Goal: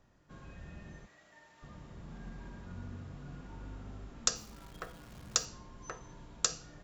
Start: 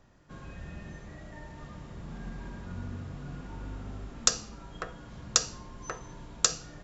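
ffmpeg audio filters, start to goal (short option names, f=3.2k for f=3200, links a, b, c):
-filter_complex "[0:a]asplit=3[a][b][c];[a]afade=t=out:st=1.05:d=0.02[d];[b]highpass=f=1.3k:p=1,afade=t=in:st=1.05:d=0.02,afade=t=out:st=1.62:d=0.02[e];[c]afade=t=in:st=1.62:d=0.02[f];[d][e][f]amix=inputs=3:normalize=0,asplit=3[g][h][i];[g]afade=t=out:st=4.35:d=0.02[j];[h]acrusher=bits=9:dc=4:mix=0:aa=0.000001,afade=t=in:st=4.35:d=0.02,afade=t=out:st=5.44:d=0.02[k];[i]afade=t=in:st=5.44:d=0.02[l];[j][k][l]amix=inputs=3:normalize=0,volume=-6dB"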